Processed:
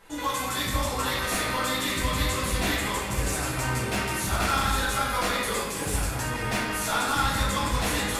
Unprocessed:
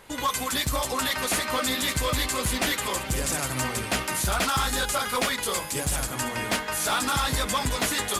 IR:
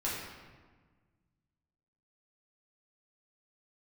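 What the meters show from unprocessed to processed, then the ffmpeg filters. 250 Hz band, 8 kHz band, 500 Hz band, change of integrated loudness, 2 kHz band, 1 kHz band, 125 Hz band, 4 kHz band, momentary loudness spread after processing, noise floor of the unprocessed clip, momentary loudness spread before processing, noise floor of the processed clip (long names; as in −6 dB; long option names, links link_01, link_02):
+1.0 dB, −3.5 dB, −0.5 dB, −0.5 dB, +0.5 dB, +0.5 dB, +2.5 dB, −2.0 dB, 4 LU, −35 dBFS, 3 LU, −32 dBFS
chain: -filter_complex "[1:a]atrim=start_sample=2205[link_01];[0:a][link_01]afir=irnorm=-1:irlink=0,volume=-5.5dB"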